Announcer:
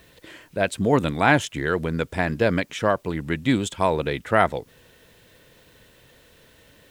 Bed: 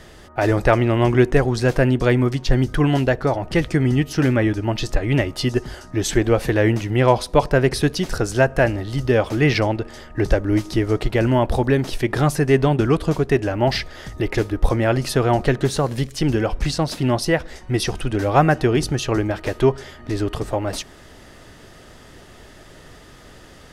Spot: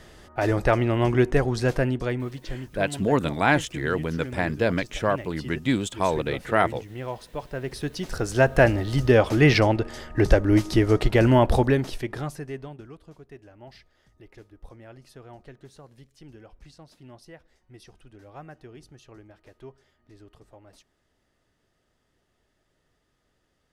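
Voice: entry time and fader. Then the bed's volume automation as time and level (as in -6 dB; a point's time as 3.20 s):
2.20 s, -2.5 dB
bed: 1.70 s -5 dB
2.62 s -18 dB
7.44 s -18 dB
8.58 s 0 dB
11.56 s 0 dB
12.96 s -28 dB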